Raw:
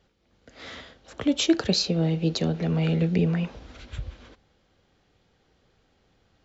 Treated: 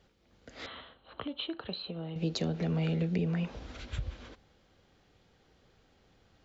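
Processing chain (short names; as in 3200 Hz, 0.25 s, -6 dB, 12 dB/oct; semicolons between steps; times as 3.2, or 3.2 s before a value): compressor 3:1, threshold -30 dBFS, peak gain reduction 11.5 dB; 0.66–2.16 rippled Chebyshev low-pass 4200 Hz, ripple 9 dB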